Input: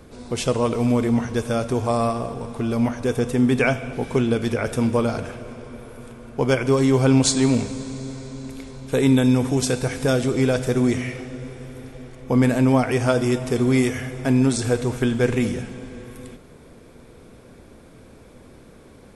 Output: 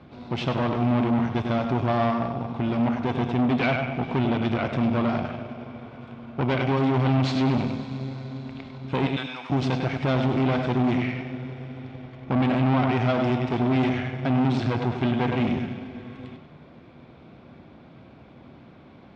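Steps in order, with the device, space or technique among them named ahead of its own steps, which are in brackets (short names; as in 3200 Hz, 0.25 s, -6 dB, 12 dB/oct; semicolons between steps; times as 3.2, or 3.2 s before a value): 9.06–9.5 HPF 1200 Hz 12 dB/oct; analogue delay pedal into a guitar amplifier (analogue delay 99 ms, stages 4096, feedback 33%, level -8 dB; tube stage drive 22 dB, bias 0.75; speaker cabinet 91–3700 Hz, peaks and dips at 150 Hz +3 dB, 460 Hz -10 dB, 740 Hz +4 dB, 1700 Hz -4 dB); gain +4 dB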